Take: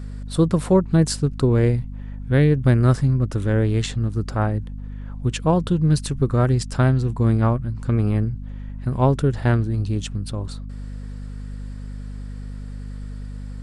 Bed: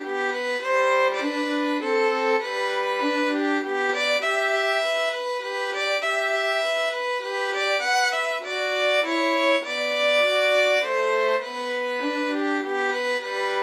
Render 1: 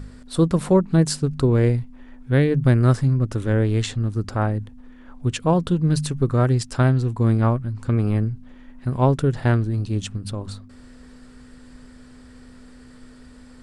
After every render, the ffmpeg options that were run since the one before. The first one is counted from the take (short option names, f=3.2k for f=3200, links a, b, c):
-af "bandreject=f=50:t=h:w=4,bandreject=f=100:t=h:w=4,bandreject=f=150:t=h:w=4,bandreject=f=200:t=h:w=4"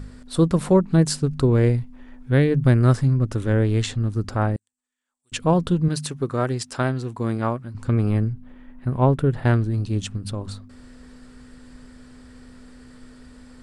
-filter_complex "[0:a]asettb=1/sr,asplit=3[a][b][c];[a]atrim=end=4.564[d];[b]atrim=start=4.56:end=5.32,asetpts=PTS-STARTPTS,afade=t=in:d=0.004:c=qsin,afade=t=out:st=0.756:d=0.004:c=qsin,bandpass=f=7.9k:t=q:w=6.9[e];[c]atrim=start=5.316[f];[d][e]acrossfade=d=0.004:c1=hsin:c2=qsin[g];[g][f]acrossfade=d=0.004:c1=qsin:c2=hsin,asettb=1/sr,asplit=3[h][i][j];[h]atrim=end=5.884[k];[i]atrim=start=5.88:end=7.75,asetpts=PTS-STARTPTS,afade=t=in:d=0.004:c=qsin,afade=t=out:st=1.866:d=0.004:c=qsin,highpass=f=310:p=1[l];[j]atrim=start=7.746[m];[k][l]acrossfade=d=0.004:c1=hsin:c2=qsin[n];[n][m]acrossfade=d=0.004:c1=qsin:c2=hsin,asettb=1/sr,asplit=3[o][p][q];[o]atrim=end=8.334[r];[p]atrim=start=8.33:end=9.45,asetpts=PTS-STARTPTS,afade=t=in:d=0.004:c=qsin,afade=t=out:st=1.116:d=0.004:c=qsin,equalizer=f=6.2k:w=0.93:g=-12.5[s];[q]atrim=start=9.446[t];[r][s]acrossfade=d=0.004:c1=hsin:c2=qsin[u];[u][t]acrossfade=d=0.004:c1=qsin:c2=hsin"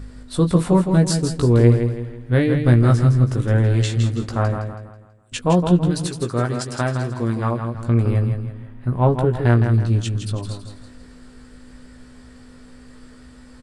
-filter_complex "[0:a]asplit=2[a][b];[b]adelay=17,volume=-5.5dB[c];[a][c]amix=inputs=2:normalize=0,aecho=1:1:163|326|489|652|815:0.447|0.174|0.0679|0.0265|0.0103"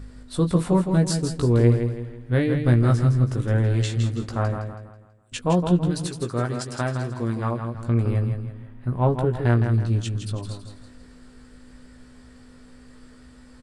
-af "volume=-4dB"